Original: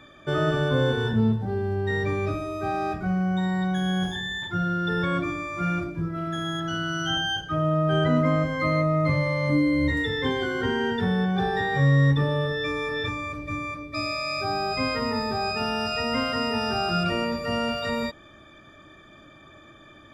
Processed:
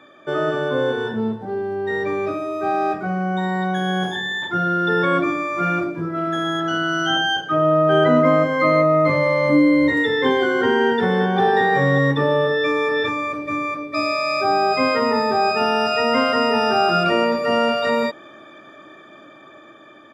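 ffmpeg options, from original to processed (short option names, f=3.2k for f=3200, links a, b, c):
-filter_complex "[0:a]asplit=2[a][b];[b]afade=t=in:st=10.44:d=0.01,afade=t=out:st=11.4:d=0.01,aecho=0:1:580|1160:0.237137|0.0237137[c];[a][c]amix=inputs=2:normalize=0,highshelf=f=2.3k:g=-10,dynaudnorm=f=830:g=7:m=6dB,highpass=310,volume=5.5dB"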